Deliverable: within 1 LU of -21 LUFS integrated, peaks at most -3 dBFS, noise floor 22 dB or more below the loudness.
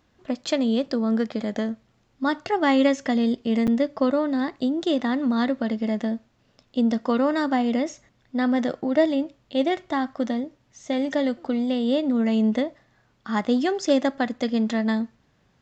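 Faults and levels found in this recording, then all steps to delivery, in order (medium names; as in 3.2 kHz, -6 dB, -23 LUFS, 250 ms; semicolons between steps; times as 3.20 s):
dropouts 1; longest dropout 7.6 ms; loudness -24.0 LUFS; peak level -7.5 dBFS; loudness target -21.0 LUFS
-> interpolate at 3.67 s, 7.6 ms; trim +3 dB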